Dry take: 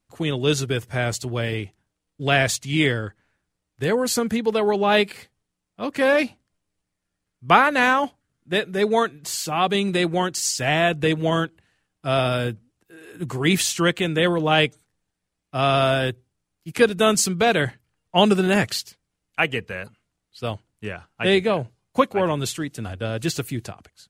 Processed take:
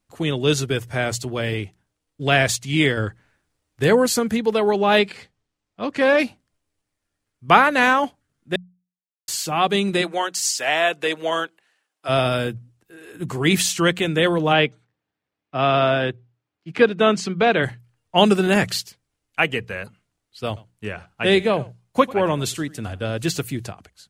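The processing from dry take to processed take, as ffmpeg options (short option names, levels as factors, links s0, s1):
-filter_complex "[0:a]asettb=1/sr,asplit=3[s0][s1][s2];[s0]atrim=end=4.994[s3];[s1]atrim=start=4.99:end=6.2,asetpts=PTS-STARTPTS,afade=t=in:d=0.004:c=qsin,afade=t=out:st=1.206:d=0.004:c=qsin,lowpass=6600[s4];[s2]atrim=start=6.196[s5];[s3][s4]acrossfade=d=0.004:c1=hsin:c2=qsin[s6];[s6][s5]acrossfade=d=0.004:c1=qsin:c2=hsin,asplit=3[s7][s8][s9];[s7]afade=t=out:st=10.01:d=0.02[s10];[s8]highpass=500,afade=t=in:st=10.01:d=0.02,afade=t=out:st=12.08:d=0.02[s11];[s9]afade=t=in:st=12.08:d=0.02[s12];[s10][s11][s12]amix=inputs=3:normalize=0,asplit=3[s13][s14][s15];[s13]afade=t=out:st=14.52:d=0.02[s16];[s14]highpass=130,lowpass=3300,afade=t=in:st=14.52:d=0.02,afade=t=out:st=17.62:d=0.02[s17];[s15]afade=t=in:st=17.62:d=0.02[s18];[s16][s17][s18]amix=inputs=3:normalize=0,asettb=1/sr,asplit=3[s19][s20][s21];[s19]atrim=end=20.474[s22];[s20]atrim=start=20.47:end=23.07,asetpts=PTS-STARTPTS,afade=t=in:d=0.004:c=qsin,afade=t=out:st=2.596:d=0.004:c=qsin,aecho=1:1:95:0.0841,atrim=end_sample=114660[s23];[s21]atrim=start=23.066[s24];[s22][s23]acrossfade=d=0.004:c1=hsin:c2=qsin[s25];[s25][s24]acrossfade=d=0.004:c1=qsin:c2=hsin,asplit=5[s26][s27][s28][s29][s30];[s26]atrim=end=2.972[s31];[s27]atrim=start=2.968:end=4.062,asetpts=PTS-STARTPTS,volume=1.58[s32];[s28]atrim=start=4.058:end=8.56,asetpts=PTS-STARTPTS,afade=t=out:st=4.498:d=0.004:c=hsin[s33];[s29]atrim=start=8.56:end=9.28,asetpts=PTS-STARTPTS,volume=0[s34];[s30]atrim=start=9.28,asetpts=PTS-STARTPTS,afade=t=in:d=0.004:c=hsin[s35];[s31][s32]acrossfade=d=0.004:c1=hsin:c2=hsin[s36];[s33][s34][s35]concat=n=3:v=0:a=1[s37];[s36][s37]acrossfade=d=0.004:c1=hsin:c2=hsin,bandreject=f=60:t=h:w=6,bandreject=f=120:t=h:w=6,bandreject=f=180:t=h:w=6,volume=1.19"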